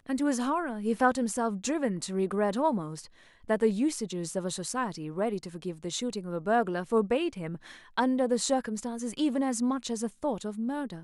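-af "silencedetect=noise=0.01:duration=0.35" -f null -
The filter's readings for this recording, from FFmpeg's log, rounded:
silence_start: 3.05
silence_end: 3.49 | silence_duration: 0.44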